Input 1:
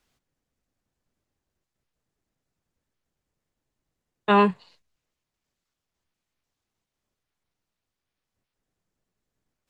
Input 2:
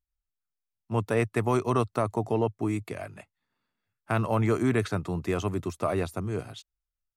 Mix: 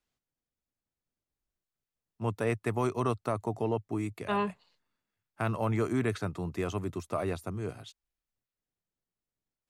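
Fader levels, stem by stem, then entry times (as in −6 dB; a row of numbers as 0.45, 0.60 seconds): −12.0, −4.5 decibels; 0.00, 1.30 seconds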